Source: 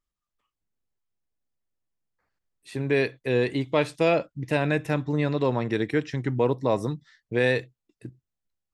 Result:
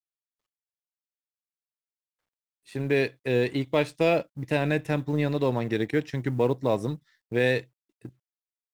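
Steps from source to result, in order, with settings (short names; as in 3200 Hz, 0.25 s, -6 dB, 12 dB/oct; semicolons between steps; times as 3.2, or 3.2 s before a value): G.711 law mismatch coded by A; dynamic EQ 1200 Hz, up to -4 dB, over -39 dBFS, Q 1.8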